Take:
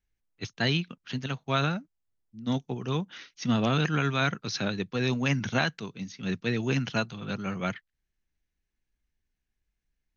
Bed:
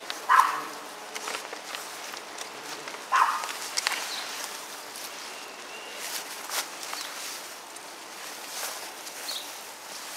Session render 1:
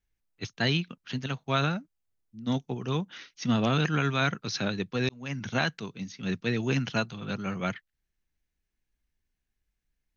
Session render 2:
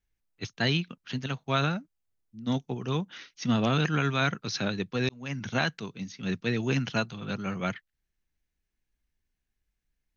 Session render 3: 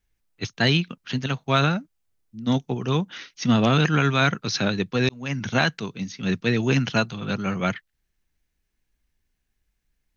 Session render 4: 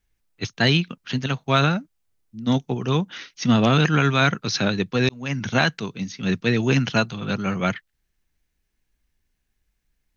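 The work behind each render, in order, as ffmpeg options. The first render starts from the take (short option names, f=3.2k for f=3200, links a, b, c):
-filter_complex "[0:a]asplit=2[a][b];[a]atrim=end=5.09,asetpts=PTS-STARTPTS,afade=t=out:st=5.086:d=0.004:c=hsin[c];[b]atrim=start=5.09,asetpts=PTS-STARTPTS,afade=t=in:d=0.58[d];[c][d]concat=n=2:v=0:a=1"
-af anull
-af "acontrast=67"
-af "volume=1.5dB"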